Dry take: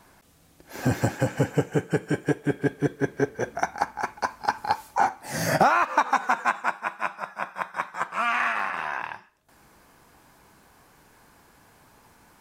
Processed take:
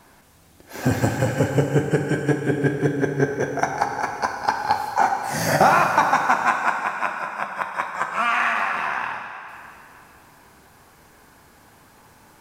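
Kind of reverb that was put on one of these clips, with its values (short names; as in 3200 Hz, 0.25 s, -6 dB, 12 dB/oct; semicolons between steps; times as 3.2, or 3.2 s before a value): plate-style reverb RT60 2.8 s, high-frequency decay 0.95×, DRR 3.5 dB; gain +3 dB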